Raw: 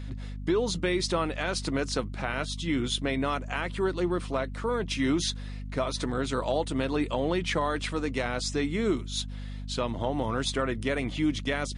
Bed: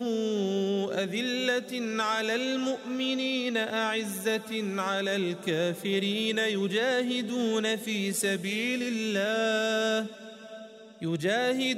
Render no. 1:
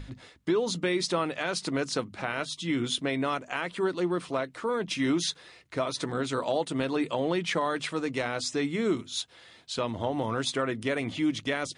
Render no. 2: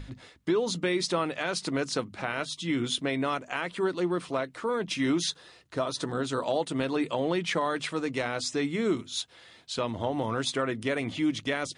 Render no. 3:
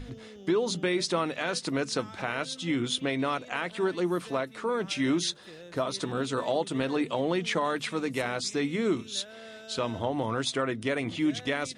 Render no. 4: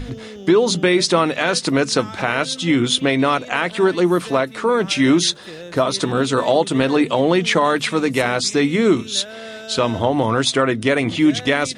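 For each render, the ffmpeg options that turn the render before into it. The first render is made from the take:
-af "bandreject=f=50:t=h:w=6,bandreject=f=100:t=h:w=6,bandreject=f=150:t=h:w=6,bandreject=f=200:t=h:w=6,bandreject=f=250:t=h:w=6"
-filter_complex "[0:a]asettb=1/sr,asplit=3[a][b][c];[a]atrim=end=5.304[d];[b]atrim=start=5.3:end=6.44,asetpts=PTS-STARTPTS,afade=t=in:d=0.004:c=qsin,afade=t=out:st=1.136:d=0.004:c=qsin,equalizer=f=2.2k:t=o:w=0.29:g=-9.5[e];[c]atrim=start=6.436[f];[d][e]acrossfade=d=0.004:c1=hsin:c2=qsin[g];[g][f]acrossfade=d=0.004:c1=qsin:c2=hsin"
-filter_complex "[1:a]volume=-19.5dB[a];[0:a][a]amix=inputs=2:normalize=0"
-af "volume=12dB,alimiter=limit=-3dB:level=0:latency=1"

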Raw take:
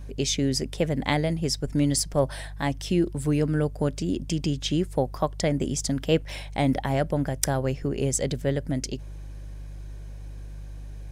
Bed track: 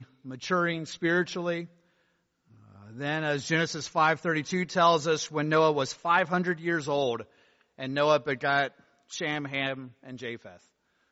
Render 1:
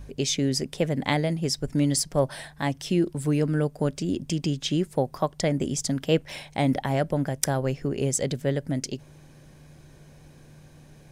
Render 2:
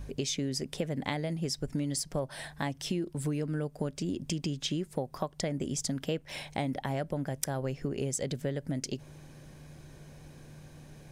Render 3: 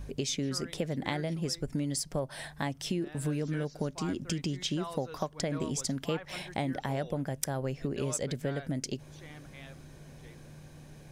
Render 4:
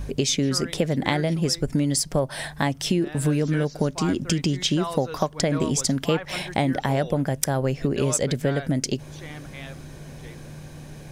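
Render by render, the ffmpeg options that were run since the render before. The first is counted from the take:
-af "bandreject=f=50:t=h:w=4,bandreject=f=100:t=h:w=4"
-af "acompressor=threshold=-30dB:ratio=5"
-filter_complex "[1:a]volume=-20.5dB[a];[0:a][a]amix=inputs=2:normalize=0"
-af "volume=10dB,alimiter=limit=-2dB:level=0:latency=1"

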